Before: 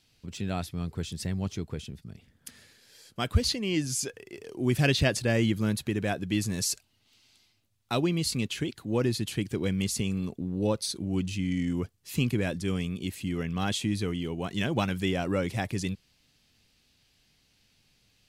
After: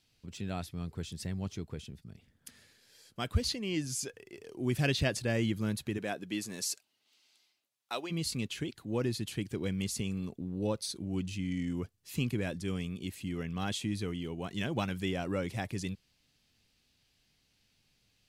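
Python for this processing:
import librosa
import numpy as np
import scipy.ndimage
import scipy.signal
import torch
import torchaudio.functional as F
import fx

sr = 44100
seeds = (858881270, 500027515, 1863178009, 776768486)

y = fx.highpass(x, sr, hz=fx.line((5.97, 200.0), (8.1, 570.0)), slope=12, at=(5.97, 8.1), fade=0.02)
y = y * 10.0 ** (-5.5 / 20.0)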